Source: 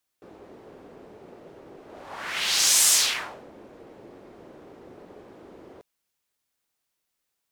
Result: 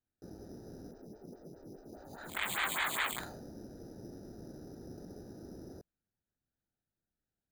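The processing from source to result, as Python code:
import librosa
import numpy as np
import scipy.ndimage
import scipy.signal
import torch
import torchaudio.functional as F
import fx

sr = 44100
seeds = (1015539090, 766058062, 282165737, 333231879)

y = fx.wiener(x, sr, points=41)
y = scipy.signal.sosfilt(scipy.signal.butter(4, 2300.0, 'lowpass', fs=sr, output='sos'), y)
y = fx.peak_eq(y, sr, hz=490.0, db=-10.5, octaves=1.6)
y = np.repeat(scipy.signal.resample_poly(y, 1, 8), 8)[:len(y)]
y = fx.stagger_phaser(y, sr, hz=4.9, at=(0.91, 3.18))
y = F.gain(torch.from_numpy(y), 7.0).numpy()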